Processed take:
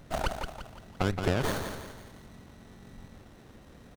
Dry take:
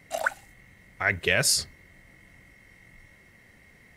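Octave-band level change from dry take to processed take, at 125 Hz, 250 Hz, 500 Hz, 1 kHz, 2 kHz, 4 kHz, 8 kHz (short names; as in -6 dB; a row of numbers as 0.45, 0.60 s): +4.0, +7.0, -1.0, 0.0, -12.0, -11.0, -16.5 dB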